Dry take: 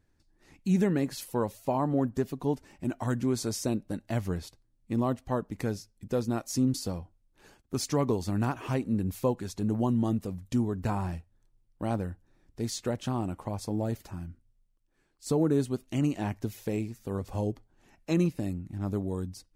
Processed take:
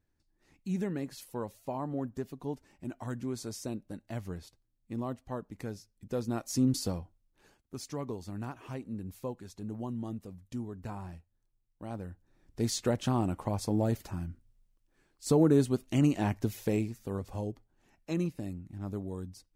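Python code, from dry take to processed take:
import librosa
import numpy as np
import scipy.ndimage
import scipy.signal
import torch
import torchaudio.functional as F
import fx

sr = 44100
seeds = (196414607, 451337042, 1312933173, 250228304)

y = fx.gain(x, sr, db=fx.line((5.77, -8.0), (6.83, 1.0), (7.76, -10.5), (11.88, -10.5), (12.61, 2.0), (16.72, 2.0), (17.49, -6.0)))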